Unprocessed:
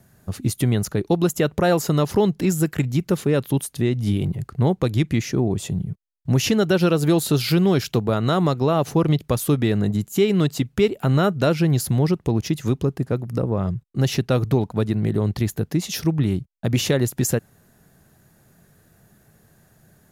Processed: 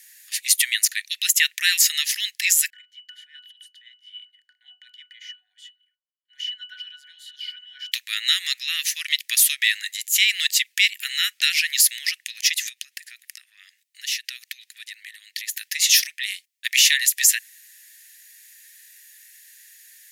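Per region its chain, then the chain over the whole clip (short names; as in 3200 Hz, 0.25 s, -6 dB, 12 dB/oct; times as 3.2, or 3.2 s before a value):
2.7–7.92 transient shaper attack -3 dB, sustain +7 dB + bell 680 Hz +14 dB 1.2 oct + octave resonator F#, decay 0.2 s
12.69–15.54 bell 200 Hz -12.5 dB 1.8 oct + compressor 8:1, threshold -35 dBFS
whole clip: Chebyshev high-pass 1800 Hz, order 6; maximiser +18 dB; gain -3 dB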